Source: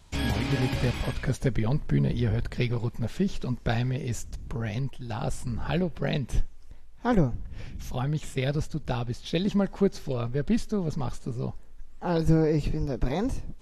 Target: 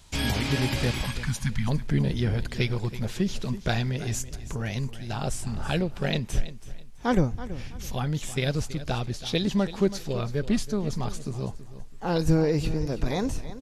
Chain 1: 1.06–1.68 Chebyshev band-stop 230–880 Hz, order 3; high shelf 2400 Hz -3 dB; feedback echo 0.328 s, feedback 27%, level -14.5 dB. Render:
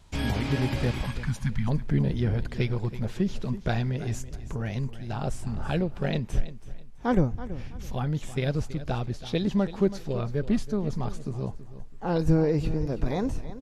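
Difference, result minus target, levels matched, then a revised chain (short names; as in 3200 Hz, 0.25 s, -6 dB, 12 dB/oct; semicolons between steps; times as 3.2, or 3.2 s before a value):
4000 Hz band -6.5 dB
1.06–1.68 Chebyshev band-stop 230–880 Hz, order 3; high shelf 2400 Hz +7.5 dB; feedback echo 0.328 s, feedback 27%, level -14.5 dB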